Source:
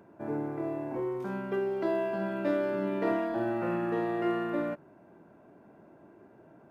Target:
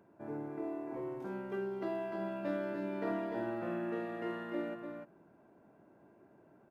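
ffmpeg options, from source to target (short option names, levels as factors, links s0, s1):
-af "aecho=1:1:297:0.531,volume=0.398"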